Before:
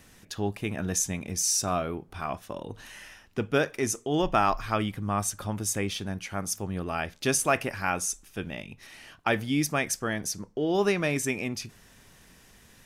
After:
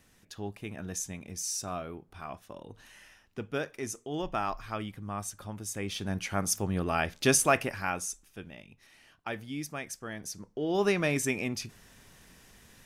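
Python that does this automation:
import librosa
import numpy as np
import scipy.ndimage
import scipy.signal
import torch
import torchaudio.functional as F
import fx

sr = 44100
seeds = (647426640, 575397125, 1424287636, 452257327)

y = fx.gain(x, sr, db=fx.line((5.71, -8.5), (6.17, 2.0), (7.33, 2.0), (8.55, -11.0), (9.99, -11.0), (10.95, -1.0)))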